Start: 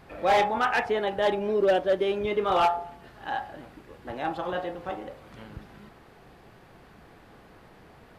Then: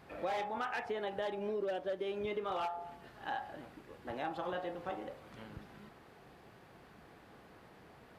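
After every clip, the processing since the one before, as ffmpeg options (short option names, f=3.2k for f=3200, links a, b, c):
-af "highpass=f=88:p=1,acompressor=threshold=-29dB:ratio=10,volume=-5dB"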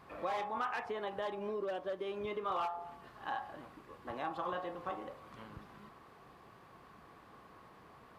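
-af "equalizer=f=1.1k:w=4.8:g=12,volume=-2dB"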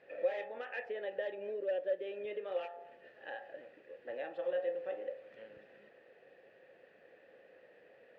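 -filter_complex "[0:a]asplit=3[a][b][c];[a]bandpass=f=530:t=q:w=8,volume=0dB[d];[b]bandpass=f=1.84k:t=q:w=8,volume=-6dB[e];[c]bandpass=f=2.48k:t=q:w=8,volume=-9dB[f];[d][e][f]amix=inputs=3:normalize=0,volume=10dB"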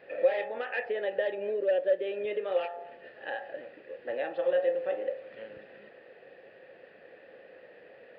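-af "aresample=11025,aresample=44100,volume=8.5dB"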